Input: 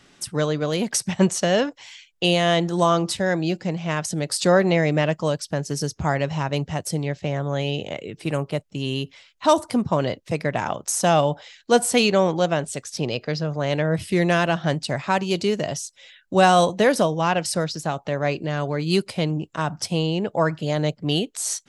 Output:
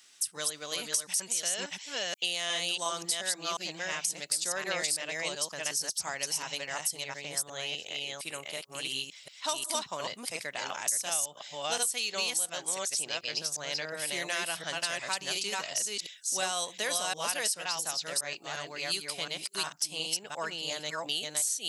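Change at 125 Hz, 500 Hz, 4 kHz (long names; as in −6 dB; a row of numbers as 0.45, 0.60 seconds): −28.0, −18.0, −3.0 decibels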